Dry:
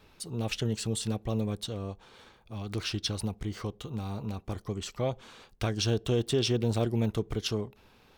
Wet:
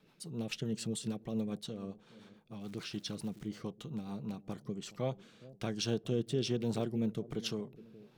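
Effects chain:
low shelf with overshoot 110 Hz −11 dB, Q 3
0:02.59–0:03.47: surface crackle 580 per second −44 dBFS
on a send: bucket-brigade delay 419 ms, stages 2,048, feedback 39%, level −17 dB
on the sum: rotating-speaker cabinet horn 7 Hz, later 1.2 Hz, at 0:03.94
level −5.5 dB

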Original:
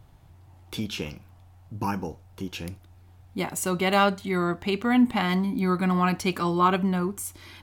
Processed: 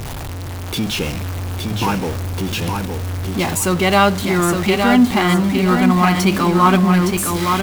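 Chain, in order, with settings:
converter with a step at zero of −28.5 dBFS
repeating echo 864 ms, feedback 33%, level −5 dB
level +6.5 dB

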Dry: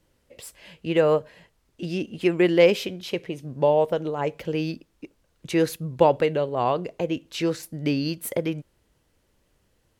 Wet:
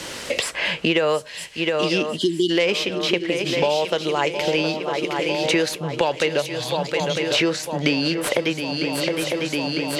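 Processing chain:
stylus tracing distortion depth 0.025 ms
brickwall limiter −13.5 dBFS, peak gain reduction 8 dB
spectral tilt +3.5 dB per octave
time-frequency box erased 0:02.16–0:02.50, 420–2,900 Hz
high-frequency loss of the air 82 metres
gain on a spectral selection 0:06.41–0:07.30, 220–3,200 Hz −27 dB
feedback echo with a long and a short gap by turns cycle 952 ms, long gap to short 3 to 1, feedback 56%, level −12 dB
multiband upward and downward compressor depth 100%
level +7.5 dB

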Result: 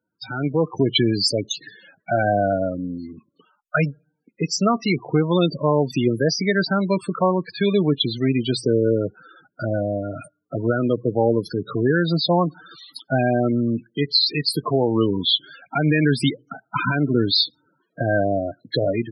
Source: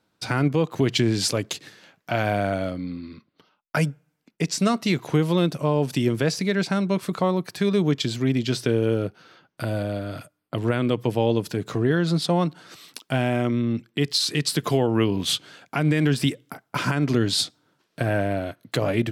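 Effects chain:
spectral peaks only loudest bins 16
spectral tilt +2 dB per octave
automatic gain control gain up to 11.5 dB
level −4 dB

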